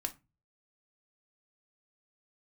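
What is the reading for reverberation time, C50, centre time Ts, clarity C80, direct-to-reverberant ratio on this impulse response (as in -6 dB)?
0.25 s, 18.0 dB, 5 ms, 26.0 dB, 4.0 dB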